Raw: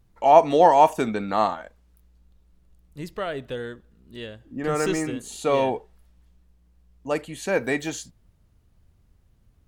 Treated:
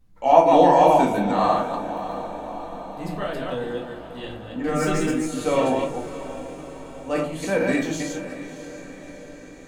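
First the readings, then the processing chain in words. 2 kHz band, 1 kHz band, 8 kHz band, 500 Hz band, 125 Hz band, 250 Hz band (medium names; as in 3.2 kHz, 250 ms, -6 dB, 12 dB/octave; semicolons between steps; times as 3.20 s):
+1.5 dB, +1.5 dB, +1.0 dB, +2.0 dB, +4.5 dB, +5.5 dB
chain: chunks repeated in reverse 146 ms, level -2 dB; on a send: echo that smears into a reverb 638 ms, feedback 61%, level -13 dB; on the sum: simulated room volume 240 m³, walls furnished, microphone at 2 m; trim -4 dB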